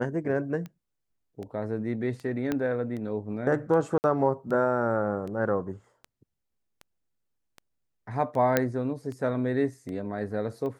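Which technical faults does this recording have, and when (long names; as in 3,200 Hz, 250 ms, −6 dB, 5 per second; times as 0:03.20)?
scratch tick 78 rpm −27 dBFS
0:02.52: click −15 dBFS
0:03.98–0:04.04: drop-out 59 ms
0:08.57: click −8 dBFS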